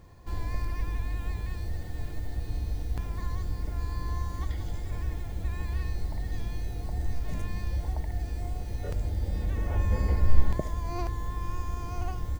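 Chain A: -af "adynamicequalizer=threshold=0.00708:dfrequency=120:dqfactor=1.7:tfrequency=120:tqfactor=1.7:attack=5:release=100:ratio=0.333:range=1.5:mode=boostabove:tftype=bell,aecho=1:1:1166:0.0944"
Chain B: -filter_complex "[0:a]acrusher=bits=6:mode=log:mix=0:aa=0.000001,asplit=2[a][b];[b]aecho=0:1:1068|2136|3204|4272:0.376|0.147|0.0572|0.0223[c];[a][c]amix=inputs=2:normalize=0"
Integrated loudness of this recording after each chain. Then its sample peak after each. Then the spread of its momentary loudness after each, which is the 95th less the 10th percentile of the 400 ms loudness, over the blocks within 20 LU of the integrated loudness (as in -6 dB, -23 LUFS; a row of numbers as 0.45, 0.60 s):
-33.0, -33.0 LUFS; -4.5, -5.0 dBFS; 7, 7 LU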